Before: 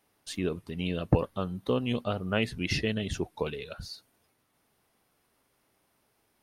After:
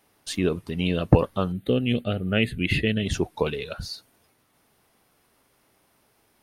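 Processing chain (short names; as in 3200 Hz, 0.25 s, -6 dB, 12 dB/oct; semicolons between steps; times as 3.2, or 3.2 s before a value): 1.52–3.06 fixed phaser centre 2400 Hz, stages 4; gain +7 dB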